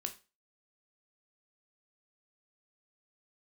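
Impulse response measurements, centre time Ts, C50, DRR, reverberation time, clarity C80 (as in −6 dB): 9 ms, 14.0 dB, 5.0 dB, 0.30 s, 20.0 dB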